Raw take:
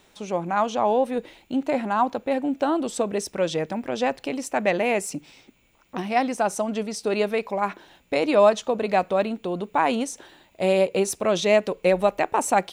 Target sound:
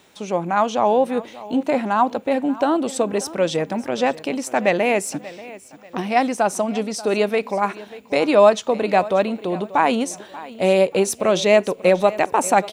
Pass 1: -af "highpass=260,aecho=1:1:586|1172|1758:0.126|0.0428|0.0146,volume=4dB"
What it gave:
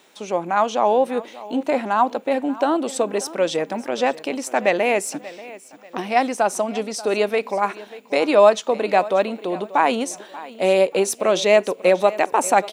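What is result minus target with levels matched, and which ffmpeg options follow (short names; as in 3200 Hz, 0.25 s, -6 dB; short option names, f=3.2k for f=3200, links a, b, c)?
125 Hz band -6.0 dB
-af "highpass=86,aecho=1:1:586|1172|1758:0.126|0.0428|0.0146,volume=4dB"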